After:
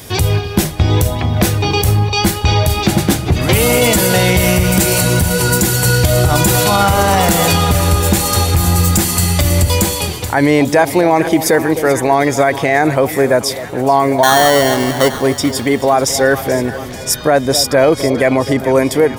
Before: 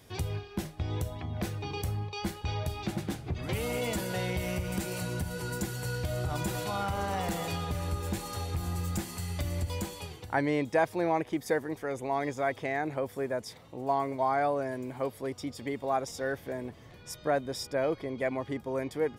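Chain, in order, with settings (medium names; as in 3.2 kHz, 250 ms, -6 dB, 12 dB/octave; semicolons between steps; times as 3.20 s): treble shelf 5.4 kHz +8.5 dB; 14.23–15.21 s: sample-rate reducer 2.5 kHz, jitter 0%; two-band feedback delay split 850 Hz, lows 257 ms, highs 434 ms, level -14.5 dB; loudness maximiser +22 dB; trim -1 dB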